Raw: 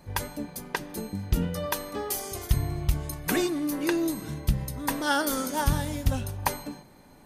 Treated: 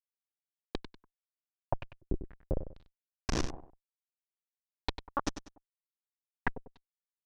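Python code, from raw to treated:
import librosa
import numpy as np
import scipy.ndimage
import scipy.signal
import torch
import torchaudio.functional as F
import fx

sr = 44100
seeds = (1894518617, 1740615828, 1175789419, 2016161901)

p1 = fx.noise_reduce_blind(x, sr, reduce_db=18)
p2 = fx.step_gate(p1, sr, bpm=61, pattern='.x.xx..xx', floor_db=-60.0, edge_ms=4.5)
p3 = fx.schmitt(p2, sr, flips_db=-18.5)
p4 = p3 + fx.echo_feedback(p3, sr, ms=97, feedback_pct=30, wet_db=-11, dry=0)
p5 = fx.filter_held_lowpass(p4, sr, hz=4.0, low_hz=360.0, high_hz=5900.0)
y = p5 * librosa.db_to_amplitude(4.5)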